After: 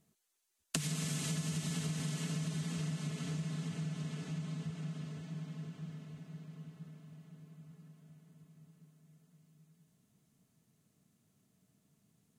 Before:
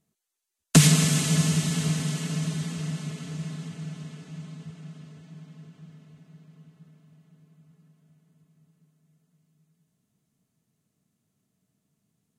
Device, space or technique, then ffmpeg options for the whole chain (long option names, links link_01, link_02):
serial compression, leveller first: -af "acompressor=threshold=-25dB:ratio=2.5,acompressor=threshold=-39dB:ratio=4,volume=2.5dB"